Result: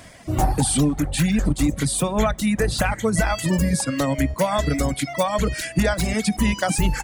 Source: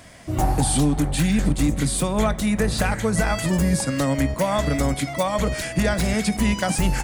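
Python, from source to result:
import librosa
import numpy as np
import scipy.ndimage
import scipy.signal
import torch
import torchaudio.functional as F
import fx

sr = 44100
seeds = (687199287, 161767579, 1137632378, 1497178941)

y = fx.dereverb_blind(x, sr, rt60_s=1.4)
y = y * librosa.db_to_amplitude(2.0)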